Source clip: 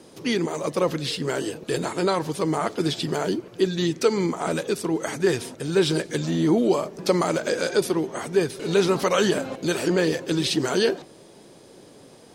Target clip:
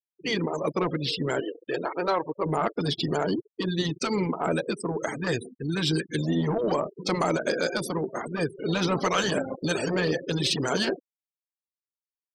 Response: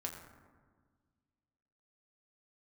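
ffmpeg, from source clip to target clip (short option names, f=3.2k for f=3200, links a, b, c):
-filter_complex "[0:a]aeval=exprs='sgn(val(0))*max(abs(val(0))-0.00794,0)':c=same,asettb=1/sr,asplit=3[a][b][c];[a]atrim=end=1.404[d];[b]atrim=start=1.4:end=2.46,asetpts=PTS-STARTPTS,afade=t=in:d=0.004:c=qsin,afade=t=out:st=1.056:d=0.004:c=qsin,bass=f=250:g=-14,treble=f=4k:g=-8[e];[c]atrim=start=2.456[f];[d][e]acrossfade=d=0.004:c1=hsin:c2=qsin[g];[g][f]acrossfade=d=0.004:c1=qsin:c2=hsin,acrusher=bits=7:mix=0:aa=0.5,asplit=3[h][i][j];[h]afade=t=out:st=5.56:d=0.02[k];[i]asuperstop=centerf=740:order=4:qfactor=0.76,afade=t=in:st=5.56:d=0.02,afade=t=out:st=6.16:d=0.02[l];[j]afade=t=in:st=6.16:d=0.02[m];[k][l][m]amix=inputs=3:normalize=0,afftfilt=real='re*gte(hypot(re,im),0.0282)':imag='im*gte(hypot(re,im),0.0282)':win_size=1024:overlap=0.75,asoftclip=type=tanh:threshold=-14dB,afftfilt=real='re*lt(hypot(re,im),0.562)':imag='im*lt(hypot(re,im),0.562)':win_size=1024:overlap=0.75,volume=1.5dB"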